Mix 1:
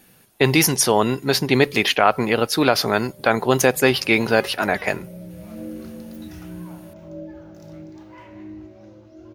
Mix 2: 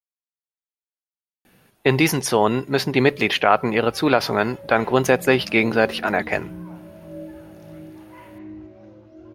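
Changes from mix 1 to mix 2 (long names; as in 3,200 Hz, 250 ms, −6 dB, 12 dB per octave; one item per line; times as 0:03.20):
speech: entry +1.45 s
master: add bass and treble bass −1 dB, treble −9 dB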